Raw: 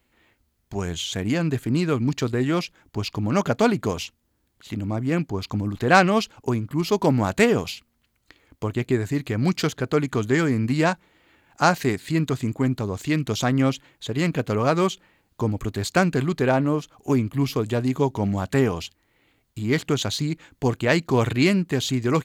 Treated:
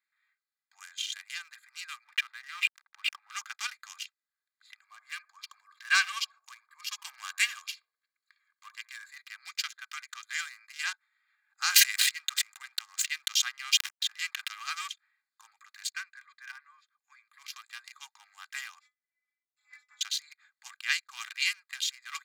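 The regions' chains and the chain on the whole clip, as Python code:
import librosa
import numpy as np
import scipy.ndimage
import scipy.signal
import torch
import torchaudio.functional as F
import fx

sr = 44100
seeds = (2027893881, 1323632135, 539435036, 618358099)

y = fx.chain(x, sr, fx.lowpass(hz=2600.0, slope=24),
    fx.backlash(play_db=-42.0),
    fx.sustainer(db_per_s=27.0), at=(2.04, 3.3))
y = fx.chain(y, sr, fx.comb(ms=1.8, depth=0.5),
    fx.echo_banded(ms=65, feedback_pct=72, hz=420.0, wet_db=-12.0), at=(4.82, 9.12))
y = fx.chain(y, sr, fx.backlash(play_db=-41.0),
    fx.sustainer(db_per_s=21.0), at=(11.64, 14.82))
y = fx.chain(y, sr, fx.ladder_highpass(hz=960.0, resonance_pct=30),
    fx.high_shelf(hz=9000.0, db=-10.5),
    fx.notch(hz=1300.0, q=9.4), at=(15.9, 17.29))
y = fx.chain(y, sr, fx.lower_of_two(delay_ms=4.4),
    fx.lowpass(hz=7900.0, slope=12),
    fx.stiff_resonator(f0_hz=150.0, decay_s=0.28, stiffness=0.008), at=(18.79, 20.01))
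y = fx.wiener(y, sr, points=15)
y = scipy.signal.sosfilt(scipy.signal.bessel(8, 2400.0, 'highpass', norm='mag', fs=sr, output='sos'), y)
y = y + 0.61 * np.pad(y, (int(2.5 * sr / 1000.0), 0))[:len(y)]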